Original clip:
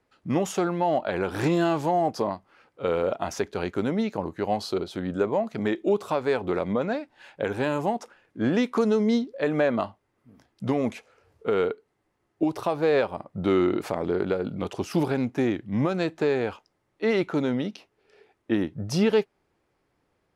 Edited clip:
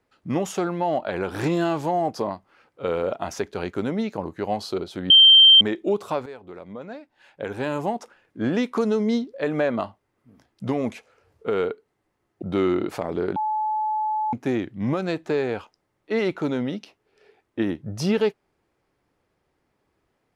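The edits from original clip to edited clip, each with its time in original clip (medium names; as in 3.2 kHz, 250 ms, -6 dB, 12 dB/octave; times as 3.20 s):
5.10–5.61 s: bleep 3.14 kHz -8 dBFS
6.26–7.77 s: fade in quadratic, from -15 dB
12.42–13.34 s: delete
14.28–15.25 s: bleep 861 Hz -21.5 dBFS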